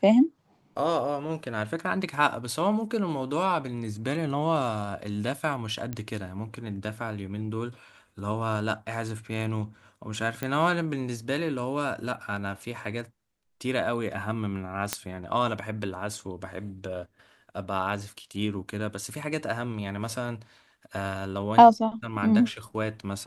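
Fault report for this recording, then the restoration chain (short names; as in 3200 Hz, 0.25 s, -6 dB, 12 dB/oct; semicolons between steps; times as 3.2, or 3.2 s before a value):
5.93 pop -19 dBFS
10.43 pop -16 dBFS
14.93 pop -8 dBFS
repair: de-click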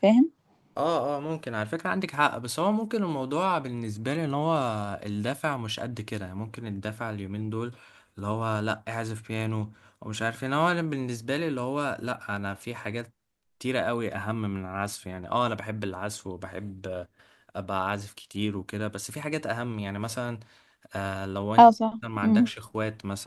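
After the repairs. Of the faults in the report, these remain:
none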